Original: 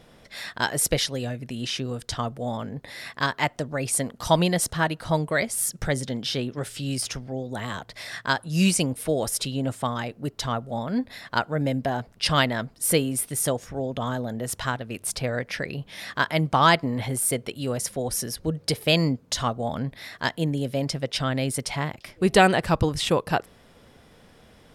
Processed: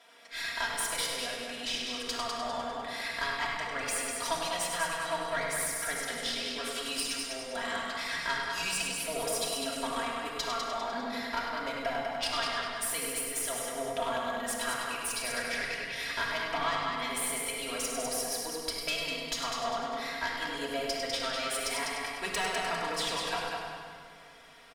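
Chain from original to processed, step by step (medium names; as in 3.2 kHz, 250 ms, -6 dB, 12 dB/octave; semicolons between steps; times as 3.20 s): high-pass 840 Hz 12 dB/octave; treble shelf 8.9 kHz -6 dB; comb 4.3 ms, depth 82%; compression 5:1, threshold -31 dBFS, peak gain reduction 16 dB; multi-head delay 100 ms, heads first and second, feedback 48%, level -7 dB; valve stage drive 23 dB, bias 0.65; simulated room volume 3100 m³, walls mixed, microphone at 2.9 m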